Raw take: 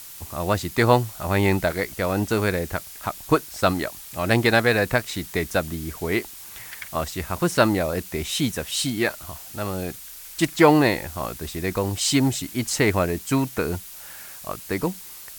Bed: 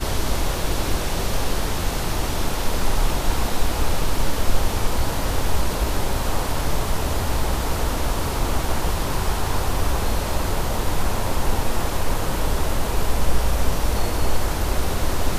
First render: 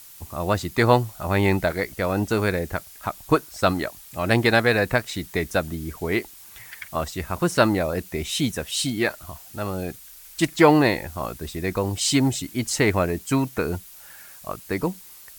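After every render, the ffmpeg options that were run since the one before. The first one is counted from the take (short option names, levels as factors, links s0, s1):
-af "afftdn=nr=6:nf=-41"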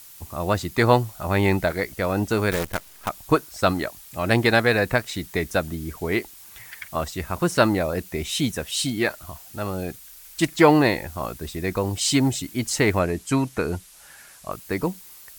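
-filter_complex "[0:a]asettb=1/sr,asplit=3[s0][s1][s2];[s0]atrim=end=2.514[s3];[s1]atrim=start=2.51:end=3.09,asetpts=PTS-STARTPTS,afade=t=in:d=0.004:c=qsin,afade=t=out:st=0.576:d=0.004:c=qsin,acrusher=bits=5:dc=4:mix=0:aa=0.000001[s4];[s2]atrim=start=3.086[s5];[s3][s4]acrossfade=d=0.004:c1=hsin:c2=qsin[s6];[s6][s5]acrossfade=d=0.004:c1=qsin:c2=hsin,asettb=1/sr,asplit=3[s7][s8][s9];[s7]atrim=end=12.994[s10];[s8]atrim=start=12.99:end=14.52,asetpts=PTS-STARTPTS,afade=t=in:d=0.004:c=qsin,afade=t=out:st=1.526:d=0.004:c=qsin,lowpass=f=12000:w=0.5412,lowpass=f=12000:w=1.3066[s11];[s9]atrim=start=14.516[s12];[s10][s11]acrossfade=d=0.004:c1=hsin:c2=qsin[s13];[s13][s12]acrossfade=d=0.004:c1=qsin:c2=hsin"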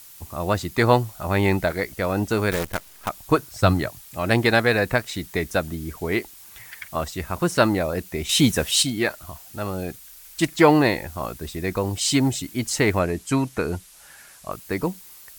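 -filter_complex "[0:a]asettb=1/sr,asplit=3[s0][s1][s2];[s0]atrim=end=3.384[s3];[s1]atrim=start=3.38:end=4.01,asetpts=PTS-STARTPTS,afade=t=in:d=0.004:c=qsin,afade=t=out:st=0.626:d=0.004:c=qsin,equalizer=f=110:w=1.5:g=13.5[s4];[s2]atrim=start=4.006[s5];[s3][s4]acrossfade=d=0.004:c1=hsin:c2=qsin[s6];[s6][s5]acrossfade=d=0.004:c1=qsin:c2=hsin,asettb=1/sr,asplit=3[s7][s8][s9];[s7]atrim=end=8.294[s10];[s8]atrim=start=8.29:end=8.83,asetpts=PTS-STARTPTS,afade=t=in:d=0.004:c=qsin,afade=t=out:st=0.536:d=0.004:c=qsin,acontrast=71[s11];[s9]atrim=start=8.826[s12];[s10][s11]acrossfade=d=0.004:c1=hsin:c2=qsin[s13];[s13][s12]acrossfade=d=0.004:c1=qsin:c2=hsin"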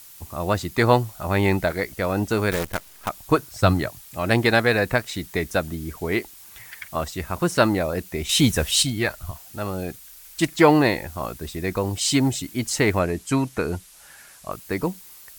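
-filter_complex "[0:a]asettb=1/sr,asplit=3[s0][s1][s2];[s0]atrim=end=8.144[s3];[s1]atrim=start=8.14:end=9.31,asetpts=PTS-STARTPTS,afade=t=in:d=0.004:c=qsin,afade=t=out:st=1.166:d=0.004:c=qsin,asubboost=boost=10:cutoff=130[s4];[s2]atrim=start=9.306[s5];[s3][s4]acrossfade=d=0.004:c1=hsin:c2=qsin[s6];[s6][s5]acrossfade=d=0.004:c1=qsin:c2=hsin"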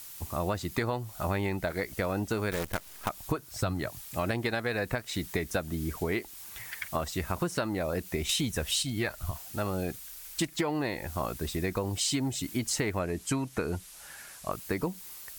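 -af "alimiter=limit=0.355:level=0:latency=1:release=349,acompressor=threshold=0.0447:ratio=6"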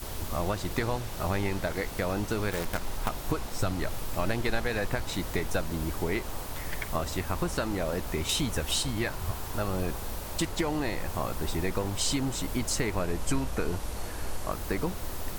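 -filter_complex "[1:a]volume=0.188[s0];[0:a][s0]amix=inputs=2:normalize=0"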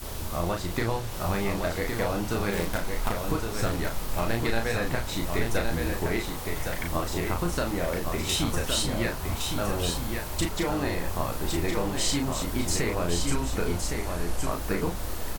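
-filter_complex "[0:a]asplit=2[s0][s1];[s1]adelay=35,volume=0.631[s2];[s0][s2]amix=inputs=2:normalize=0,aecho=1:1:1114:0.562"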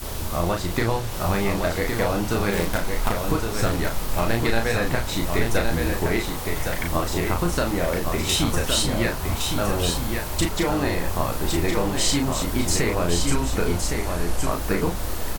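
-af "volume=1.78"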